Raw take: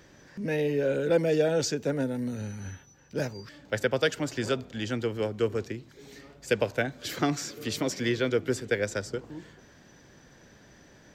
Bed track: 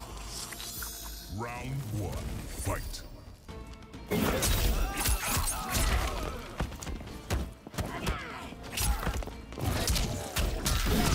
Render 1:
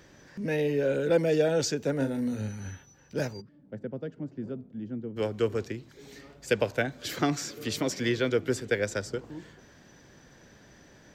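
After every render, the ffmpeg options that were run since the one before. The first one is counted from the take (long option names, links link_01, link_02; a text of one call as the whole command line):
ffmpeg -i in.wav -filter_complex "[0:a]asettb=1/sr,asplit=3[link_01][link_02][link_03];[link_01]atrim=end=1.964[link_04];[link_02]atrim=start=1.96:end=2.49,asetpts=PTS-STARTPTS,afade=type=in:duration=0.004:curve=qsin,afade=type=out:start_time=0.526:duration=0.004:curve=qsin,asplit=2[link_05][link_06];[link_06]adelay=37,volume=-7dB[link_07];[link_05][link_07]amix=inputs=2:normalize=0,atrim=end_sample=23373[link_08];[link_03]atrim=start=2.486[link_09];[link_04][link_08]acrossfade=duration=0.004:curve1=hsin:curve2=qsin[link_10];[link_10][link_09]acrossfade=duration=0.004:curve1=qsin:curve2=hsin,asplit=3[link_11][link_12][link_13];[link_11]afade=type=out:start_time=3.4:duration=0.02[link_14];[link_12]bandpass=frequency=200:width_type=q:width=1.8,afade=type=in:start_time=3.4:duration=0.02,afade=type=out:start_time=5.16:duration=0.02[link_15];[link_13]afade=type=in:start_time=5.16:duration=0.02[link_16];[link_14][link_15][link_16]amix=inputs=3:normalize=0" out.wav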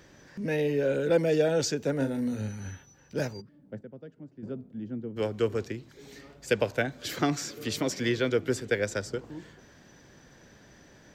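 ffmpeg -i in.wav -filter_complex "[0:a]asplit=3[link_01][link_02][link_03];[link_01]atrim=end=3.812[link_04];[link_02]atrim=start=3.808:end=4.432,asetpts=PTS-STARTPTS,volume=-9dB[link_05];[link_03]atrim=start=4.428[link_06];[link_04][link_05]acrossfade=duration=0.004:curve1=hsin:curve2=hsin[link_07];[link_07][link_06]acrossfade=duration=0.004:curve1=hsin:curve2=hsin" out.wav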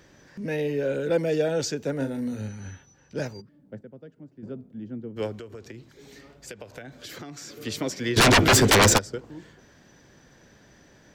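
ffmpeg -i in.wav -filter_complex "[0:a]asettb=1/sr,asplit=3[link_01][link_02][link_03];[link_01]atrim=end=2.484[link_04];[link_02]atrim=start=2.48:end=3.26,asetpts=PTS-STARTPTS,afade=type=in:duration=0.004:curve=qsin,afade=type=out:start_time=0.776:duration=0.004:curve=qsin,lowpass=9100[link_05];[link_03]atrim=start=3.256[link_06];[link_04][link_05]acrossfade=duration=0.004:curve1=hsin:curve2=qsin[link_07];[link_07][link_06]acrossfade=duration=0.004:curve1=qsin:curve2=hsin,asettb=1/sr,asplit=3[link_08][link_09][link_10];[link_08]atrim=end=5.374[link_11];[link_09]atrim=start=5.37:end=7.53,asetpts=PTS-STARTPTS,afade=type=in:duration=0.004:curve=qsin,afade=type=out:start_time=2.156:duration=0.004:curve=qsin,acompressor=threshold=-36dB:ratio=12:attack=3.2:release=140:knee=1:detection=peak[link_12];[link_10]atrim=start=7.526[link_13];[link_11][link_12]acrossfade=duration=0.004:curve1=hsin:curve2=qsin[link_14];[link_14][link_13]acrossfade=duration=0.004:curve1=qsin:curve2=hsin,asplit=3[link_15][link_16][link_17];[link_15]afade=type=out:start_time=8.16:duration=0.02[link_18];[link_16]aeval=exprs='0.237*sin(PI/2*8.91*val(0)/0.237)':channel_layout=same,afade=type=in:start_time=8.16:duration=0.02,afade=type=out:start_time=8.97:duration=0.02[link_19];[link_17]afade=type=in:start_time=8.97:duration=0.02[link_20];[link_18][link_19][link_20]amix=inputs=3:normalize=0" out.wav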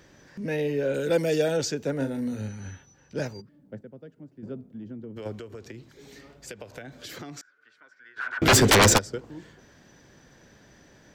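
ffmpeg -i in.wav -filter_complex "[0:a]asettb=1/sr,asplit=3[link_01][link_02][link_03];[link_01]atrim=end=0.944[link_04];[link_02]atrim=start=0.94:end=1.57,asetpts=PTS-STARTPTS,afade=type=in:duration=0.004:curve=qsin,afade=type=out:start_time=0.626:duration=0.004:curve=qsin,highshelf=frequency=4200:gain=11[link_05];[link_03]atrim=start=1.566[link_06];[link_04][link_05]acrossfade=duration=0.004:curve1=hsin:curve2=qsin[link_07];[link_07][link_06]acrossfade=duration=0.004:curve1=qsin:curve2=hsin,asplit=3[link_08][link_09][link_10];[link_08]afade=type=out:start_time=4.65:duration=0.02[link_11];[link_09]acompressor=threshold=-34dB:ratio=12:attack=3.2:release=140:knee=1:detection=peak,afade=type=in:start_time=4.65:duration=0.02,afade=type=out:start_time=5.25:duration=0.02[link_12];[link_10]afade=type=in:start_time=5.25:duration=0.02[link_13];[link_11][link_12][link_13]amix=inputs=3:normalize=0,asettb=1/sr,asplit=3[link_14][link_15][link_16];[link_14]atrim=end=7.414[link_17];[link_15]atrim=start=7.41:end=8.42,asetpts=PTS-STARTPTS,afade=type=in:duration=0.004:curve=qsin,afade=type=out:start_time=1.006:duration=0.004:curve=qsin,bandpass=frequency=1500:width_type=q:width=17[link_18];[link_16]atrim=start=8.416[link_19];[link_17][link_18]acrossfade=duration=0.004:curve1=hsin:curve2=qsin[link_20];[link_20][link_19]acrossfade=duration=0.004:curve1=qsin:curve2=hsin" out.wav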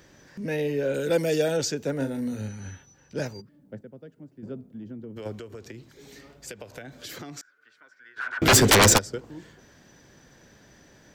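ffmpeg -i in.wav -af "highshelf=frequency=7200:gain=5" out.wav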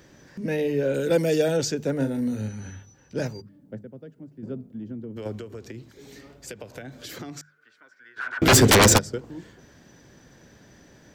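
ffmpeg -i in.wav -af "equalizer=frequency=130:width=0.32:gain=4.5,bandreject=frequency=50:width_type=h:width=6,bandreject=frequency=100:width_type=h:width=6,bandreject=frequency=150:width_type=h:width=6,bandreject=frequency=200:width_type=h:width=6" out.wav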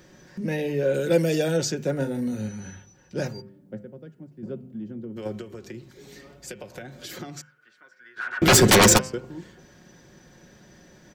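ffmpeg -i in.wav -af "aecho=1:1:5.5:0.41,bandreject=frequency=129.3:width_type=h:width=4,bandreject=frequency=258.6:width_type=h:width=4,bandreject=frequency=387.9:width_type=h:width=4,bandreject=frequency=517.2:width_type=h:width=4,bandreject=frequency=646.5:width_type=h:width=4,bandreject=frequency=775.8:width_type=h:width=4,bandreject=frequency=905.1:width_type=h:width=4,bandreject=frequency=1034.4:width_type=h:width=4,bandreject=frequency=1163.7:width_type=h:width=4,bandreject=frequency=1293:width_type=h:width=4,bandreject=frequency=1422.3:width_type=h:width=4,bandreject=frequency=1551.6:width_type=h:width=4,bandreject=frequency=1680.9:width_type=h:width=4,bandreject=frequency=1810.2:width_type=h:width=4,bandreject=frequency=1939.5:width_type=h:width=4,bandreject=frequency=2068.8:width_type=h:width=4,bandreject=frequency=2198.1:width_type=h:width=4,bandreject=frequency=2327.4:width_type=h:width=4,bandreject=frequency=2456.7:width_type=h:width=4,bandreject=frequency=2586:width_type=h:width=4,bandreject=frequency=2715.3:width_type=h:width=4,bandreject=frequency=2844.6:width_type=h:width=4,bandreject=frequency=2973.9:width_type=h:width=4,bandreject=frequency=3103.2:width_type=h:width=4,bandreject=frequency=3232.5:width_type=h:width=4" out.wav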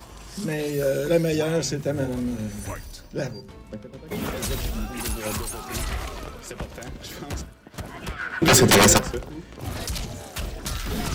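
ffmpeg -i in.wav -i bed.wav -filter_complex "[1:a]volume=-1dB[link_01];[0:a][link_01]amix=inputs=2:normalize=0" out.wav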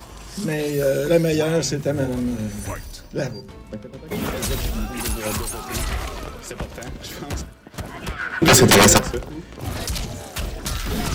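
ffmpeg -i in.wav -af "volume=3.5dB,alimiter=limit=-3dB:level=0:latency=1" out.wav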